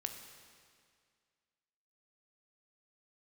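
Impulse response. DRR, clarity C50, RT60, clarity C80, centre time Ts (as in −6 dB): 5.0 dB, 6.5 dB, 2.1 s, 8.0 dB, 36 ms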